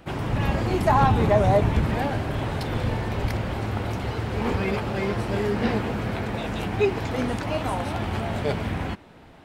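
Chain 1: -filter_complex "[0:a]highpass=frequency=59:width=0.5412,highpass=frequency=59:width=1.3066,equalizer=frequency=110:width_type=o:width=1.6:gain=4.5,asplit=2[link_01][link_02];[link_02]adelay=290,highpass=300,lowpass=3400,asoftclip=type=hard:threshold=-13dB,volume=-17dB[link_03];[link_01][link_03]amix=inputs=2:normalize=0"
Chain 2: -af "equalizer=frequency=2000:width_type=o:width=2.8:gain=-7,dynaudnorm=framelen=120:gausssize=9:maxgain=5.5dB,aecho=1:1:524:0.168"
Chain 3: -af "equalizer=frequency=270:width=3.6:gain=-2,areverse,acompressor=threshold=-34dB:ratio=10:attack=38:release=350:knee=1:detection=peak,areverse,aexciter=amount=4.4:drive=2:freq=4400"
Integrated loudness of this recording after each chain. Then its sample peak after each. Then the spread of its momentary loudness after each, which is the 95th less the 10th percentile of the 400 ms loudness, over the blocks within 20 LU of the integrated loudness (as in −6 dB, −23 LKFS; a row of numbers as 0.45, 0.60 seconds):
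−23.5, −21.5, −36.5 LKFS; −4.5, −4.5, −17.5 dBFS; 9, 9, 1 LU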